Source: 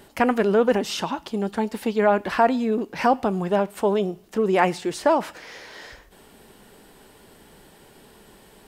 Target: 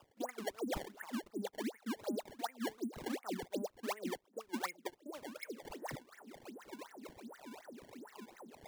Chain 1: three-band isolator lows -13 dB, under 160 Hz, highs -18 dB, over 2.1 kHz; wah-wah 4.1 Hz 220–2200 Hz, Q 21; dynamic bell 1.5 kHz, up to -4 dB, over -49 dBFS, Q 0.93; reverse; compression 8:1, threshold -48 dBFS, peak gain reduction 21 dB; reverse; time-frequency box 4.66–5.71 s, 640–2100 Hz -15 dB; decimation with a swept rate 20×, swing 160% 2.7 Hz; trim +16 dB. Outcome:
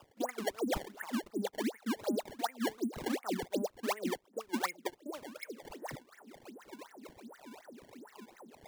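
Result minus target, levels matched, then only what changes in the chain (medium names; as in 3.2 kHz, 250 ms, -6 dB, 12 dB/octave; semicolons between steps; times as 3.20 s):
compression: peak gain reduction -5.5 dB
change: compression 8:1, threshold -54 dBFS, peak gain reduction 26 dB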